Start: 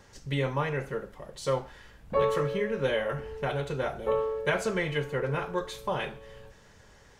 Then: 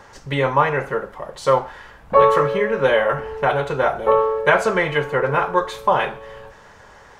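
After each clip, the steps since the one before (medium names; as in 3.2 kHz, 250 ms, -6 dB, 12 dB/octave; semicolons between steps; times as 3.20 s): peaking EQ 1 kHz +12.5 dB 2.2 oct; trim +4 dB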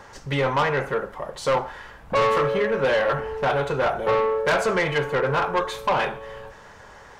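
saturation -16 dBFS, distortion -9 dB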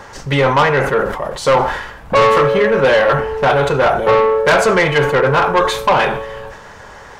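decay stretcher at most 62 dB/s; trim +9 dB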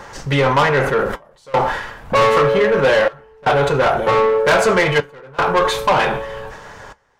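in parallel at -5 dB: saturation -15 dBFS, distortion -11 dB; on the sum: trance gate "xxxxxx..xx" 78 bpm -24 dB; flange 0.32 Hz, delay 5.7 ms, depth 3.7 ms, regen -67%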